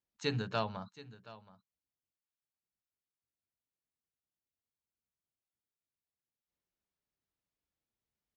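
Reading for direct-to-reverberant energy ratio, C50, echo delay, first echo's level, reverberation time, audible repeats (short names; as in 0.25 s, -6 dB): none, none, 0.724 s, -18.0 dB, none, 1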